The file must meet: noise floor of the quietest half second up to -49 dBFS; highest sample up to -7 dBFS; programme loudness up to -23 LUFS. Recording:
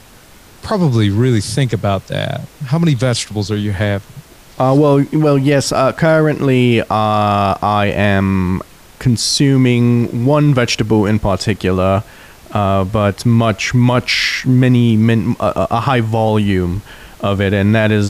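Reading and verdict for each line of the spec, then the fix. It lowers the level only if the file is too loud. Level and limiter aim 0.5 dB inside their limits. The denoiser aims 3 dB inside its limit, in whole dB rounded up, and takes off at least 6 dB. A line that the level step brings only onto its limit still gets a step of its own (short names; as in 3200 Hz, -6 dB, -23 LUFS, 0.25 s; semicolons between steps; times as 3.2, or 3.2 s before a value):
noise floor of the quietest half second -42 dBFS: fail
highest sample -3.5 dBFS: fail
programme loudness -14.0 LUFS: fail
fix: gain -9.5 dB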